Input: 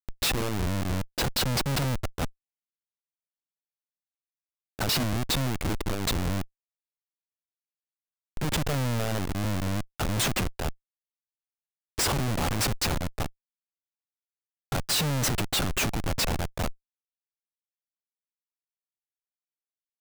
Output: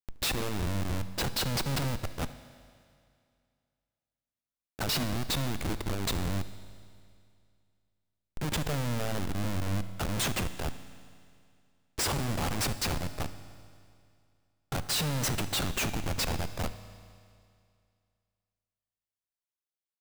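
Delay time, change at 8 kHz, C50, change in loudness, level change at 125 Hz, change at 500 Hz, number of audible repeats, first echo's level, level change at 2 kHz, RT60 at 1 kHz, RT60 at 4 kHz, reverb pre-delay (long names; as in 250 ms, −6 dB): 73 ms, −3.5 dB, 12.5 dB, −3.5 dB, −3.5 dB, −4.0 dB, 1, −21.5 dB, −3.5 dB, 2.3 s, 2.3 s, 8 ms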